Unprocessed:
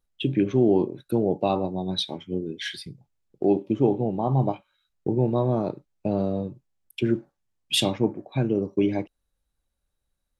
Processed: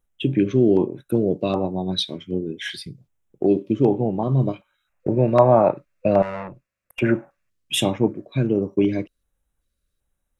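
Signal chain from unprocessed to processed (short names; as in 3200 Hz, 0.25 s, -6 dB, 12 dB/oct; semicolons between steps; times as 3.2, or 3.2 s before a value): LFO notch square 1.3 Hz 820–4500 Hz; 6.22–7 tube stage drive 37 dB, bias 0.6; 4.87–7.49 spectral gain 510–2800 Hz +11 dB; gain +3.5 dB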